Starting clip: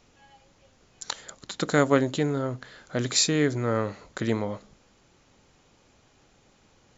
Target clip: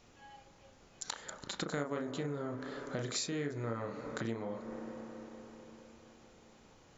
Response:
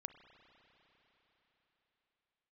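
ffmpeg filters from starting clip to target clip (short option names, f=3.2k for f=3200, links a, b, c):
-filter_complex "[0:a]asplit=2[a][b];[b]lowpass=1.7k[c];[1:a]atrim=start_sample=2205,lowshelf=f=140:g=-10,adelay=35[d];[c][d]afir=irnorm=-1:irlink=0,volume=4.5dB[e];[a][e]amix=inputs=2:normalize=0,acompressor=threshold=-34dB:ratio=4,volume=-2.5dB"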